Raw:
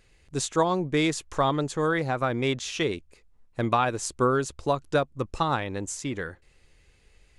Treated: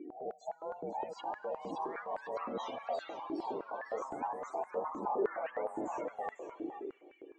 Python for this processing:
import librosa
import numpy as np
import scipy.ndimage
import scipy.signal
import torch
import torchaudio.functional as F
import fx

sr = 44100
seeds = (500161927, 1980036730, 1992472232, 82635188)

p1 = fx.spec_swells(x, sr, rise_s=0.44)
p2 = fx.peak_eq(p1, sr, hz=960.0, db=-8.0, octaves=1.1)
p3 = fx.over_compress(p2, sr, threshold_db=-37.0, ratio=-1.0)
p4 = p3 * np.sin(2.0 * np.pi * 330.0 * np.arange(len(p3)) / sr)
p5 = fx.cheby_harmonics(p4, sr, harmonics=(5,), levels_db=(-16,), full_scale_db=-24.5)
p6 = fx.spec_topn(p5, sr, count=16)
p7 = fx.echo_pitch(p6, sr, ms=762, semitones=3, count=2, db_per_echo=-3.0)
p8 = fx.air_absorb(p7, sr, metres=190.0)
p9 = p8 + fx.echo_single(p8, sr, ms=500, db=-10.5, dry=0)
p10 = fx.rev_schroeder(p9, sr, rt60_s=3.0, comb_ms=32, drr_db=18.5)
p11 = fx.filter_held_highpass(p10, sr, hz=9.7, low_hz=300.0, high_hz=1800.0)
y = p11 * 10.0 ** (-4.5 / 20.0)